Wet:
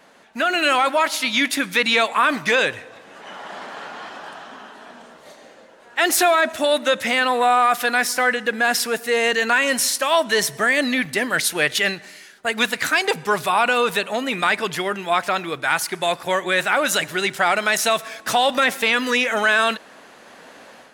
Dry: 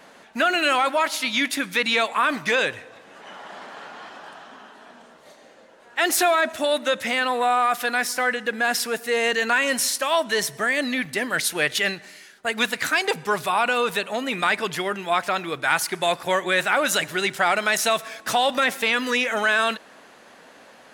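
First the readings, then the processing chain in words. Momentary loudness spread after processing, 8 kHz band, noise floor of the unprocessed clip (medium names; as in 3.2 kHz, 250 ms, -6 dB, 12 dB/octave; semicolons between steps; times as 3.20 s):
14 LU, +3.0 dB, -50 dBFS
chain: level rider gain up to 8 dB; trim -3 dB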